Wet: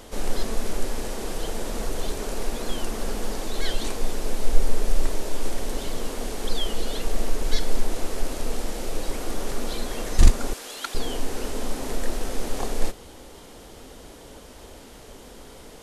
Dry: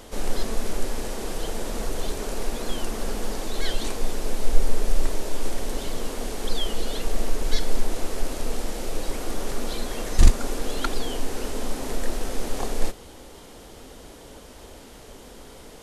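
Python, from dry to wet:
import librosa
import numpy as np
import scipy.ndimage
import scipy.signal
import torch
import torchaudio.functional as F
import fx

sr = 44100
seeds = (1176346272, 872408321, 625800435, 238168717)

y = fx.highpass(x, sr, hz=1500.0, slope=6, at=(10.53, 10.95))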